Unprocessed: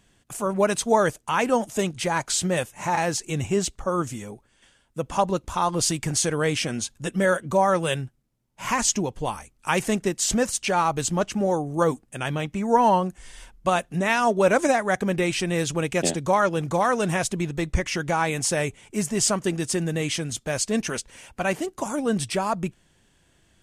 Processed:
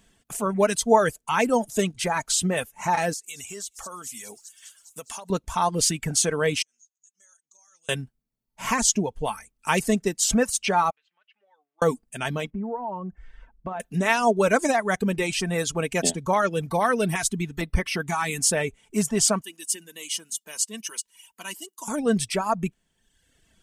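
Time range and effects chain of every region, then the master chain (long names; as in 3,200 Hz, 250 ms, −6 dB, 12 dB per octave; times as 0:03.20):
0:03.13–0:05.30: spectral tilt +4 dB per octave + delay with a high-pass on its return 203 ms, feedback 73%, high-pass 4,800 Hz, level −19 dB + downward compressor, threshold −34 dBFS
0:06.62–0:07.89: resonant band-pass 6,500 Hz, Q 12 + downward compressor 4 to 1, threshold −54 dBFS
0:10.90–0:11.82: four-pole ladder band-pass 3,000 Hz, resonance 25% + high-frequency loss of the air 370 metres + downward compressor 2.5 to 1, threshold −56 dBFS
0:12.50–0:13.80: low-pass filter 1,200 Hz + downward compressor 10 to 1, threshold −27 dBFS
0:16.70–0:18.57: high-shelf EQ 8,700 Hz +5 dB + auto-filter notch square 1.1 Hz 550–7,000 Hz
0:19.41–0:21.88: first difference + hollow resonant body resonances 210/320/970/2,900 Hz, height 15 dB, ringing for 55 ms
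whole clip: high-shelf EQ 11,000 Hz +5.5 dB; reverb reduction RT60 1 s; comb filter 4.5 ms, depth 38%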